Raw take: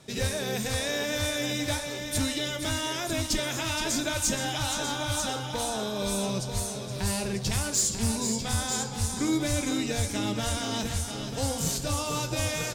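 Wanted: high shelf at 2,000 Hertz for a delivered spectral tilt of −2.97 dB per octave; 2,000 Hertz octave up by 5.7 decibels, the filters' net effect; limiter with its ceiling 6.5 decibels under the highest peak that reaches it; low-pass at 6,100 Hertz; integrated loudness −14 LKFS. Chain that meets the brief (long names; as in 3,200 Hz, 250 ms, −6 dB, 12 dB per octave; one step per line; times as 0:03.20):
low-pass filter 6,100 Hz
high-shelf EQ 2,000 Hz +4 dB
parametric band 2,000 Hz +5 dB
level +15 dB
brickwall limiter −5 dBFS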